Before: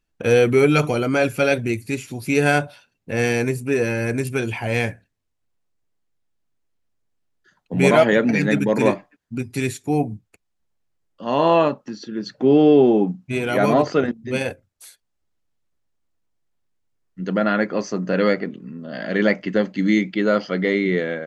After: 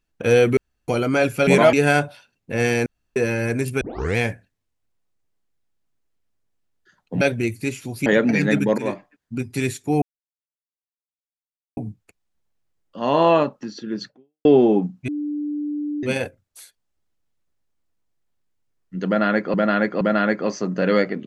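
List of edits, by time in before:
0.57–0.88 s: room tone
1.47–2.32 s: swap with 7.80–8.06 s
3.45–3.75 s: room tone
4.40 s: tape start 0.36 s
8.78–9.37 s: fade in equal-power, from -13.5 dB
10.02 s: insert silence 1.75 s
12.32–12.70 s: fade out exponential
13.33–14.28 s: bleep 295 Hz -23 dBFS
17.32–17.79 s: loop, 3 plays

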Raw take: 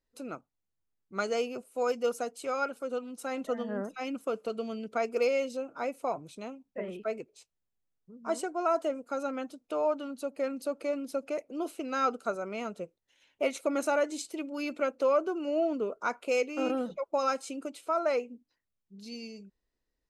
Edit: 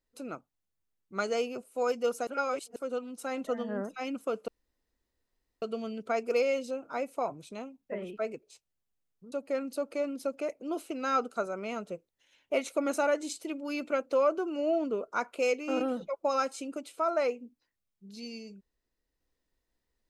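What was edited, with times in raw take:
2.27–2.76 s: reverse
4.48 s: insert room tone 1.14 s
8.18–10.21 s: delete

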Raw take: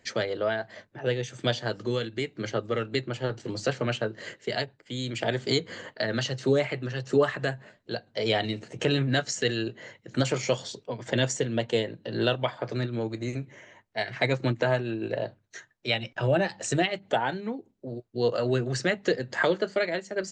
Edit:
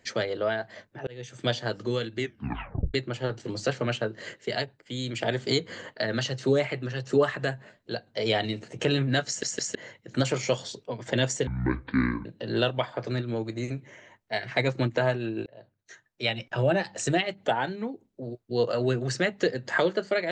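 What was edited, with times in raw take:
1.07–1.60 s: fade in equal-power
2.18 s: tape stop 0.76 s
9.27 s: stutter in place 0.16 s, 3 plays
11.47–11.90 s: speed 55%
15.11–15.99 s: fade in

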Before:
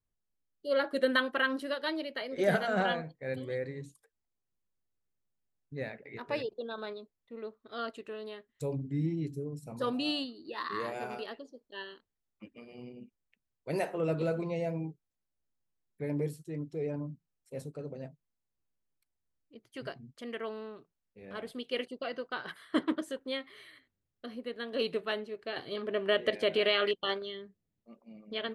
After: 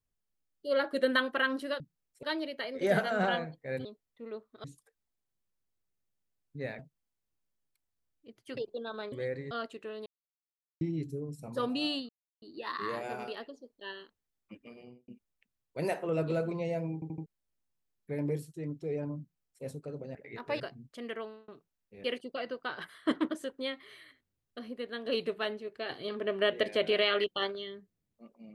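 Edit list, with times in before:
3.42–3.81 s: swap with 6.96–7.75 s
5.96–6.41 s: swap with 18.06–19.84 s
8.30–9.05 s: mute
10.33 s: insert silence 0.33 s
12.65–12.99 s: studio fade out
14.85 s: stutter in place 0.08 s, 4 plays
17.11–17.54 s: copy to 1.80 s
20.39–20.72 s: fade out
21.28–21.71 s: delete

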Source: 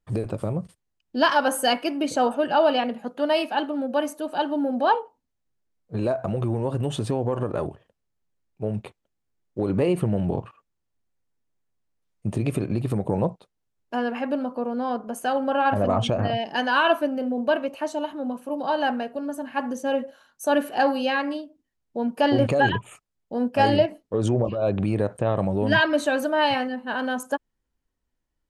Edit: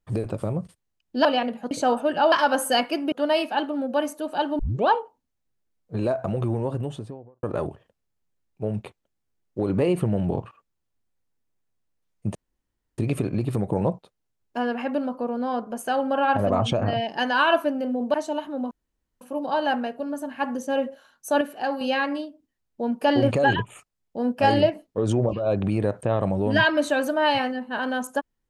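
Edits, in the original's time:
1.25–2.05 s: swap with 2.66–3.12 s
4.59 s: tape start 0.29 s
6.48–7.43 s: studio fade out
12.35 s: insert room tone 0.63 s
17.51–17.80 s: delete
18.37 s: insert room tone 0.50 s
20.57–20.97 s: gain -6 dB

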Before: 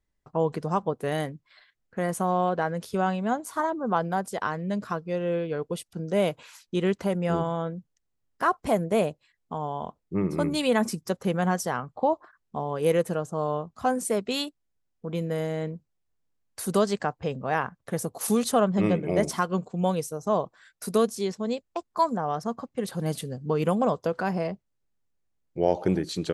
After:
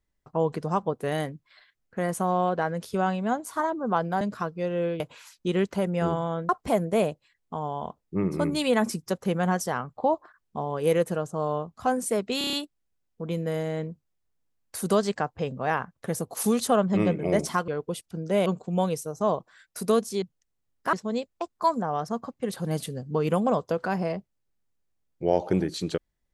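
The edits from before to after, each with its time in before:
4.21–4.71 s: delete
5.50–6.28 s: move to 19.52 s
7.77–8.48 s: move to 21.28 s
14.37 s: stutter 0.03 s, 6 plays

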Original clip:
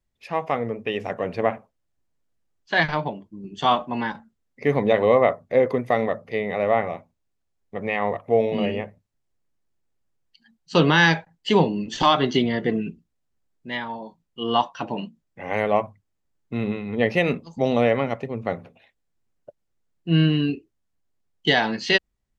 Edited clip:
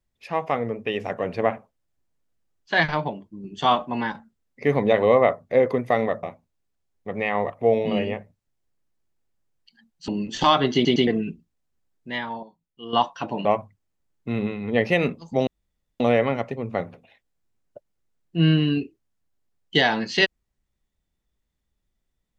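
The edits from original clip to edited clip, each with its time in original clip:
6.23–6.90 s: delete
10.75–11.67 s: delete
12.33 s: stutter in place 0.11 s, 3 plays
14.02–14.52 s: gain -9.5 dB
15.04–15.70 s: delete
17.72 s: insert room tone 0.53 s

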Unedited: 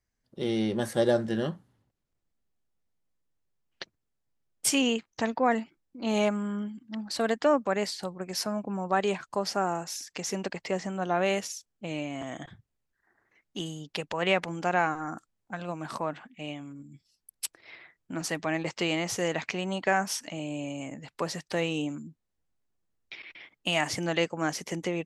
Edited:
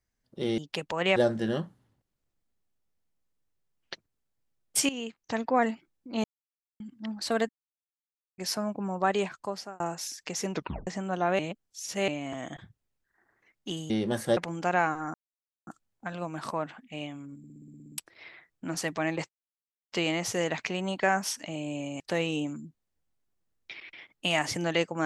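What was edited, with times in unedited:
0.58–1.05 s: swap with 13.79–14.37 s
4.78–5.40 s: fade in, from -15 dB
6.13–6.69 s: mute
7.38–8.27 s: mute
8.94–9.69 s: fade out equal-power
10.41 s: tape stop 0.35 s
11.28–11.97 s: reverse
15.14 s: insert silence 0.53 s
16.85 s: stutter in place 0.06 s, 10 plays
18.76 s: insert silence 0.63 s
20.84–21.42 s: delete

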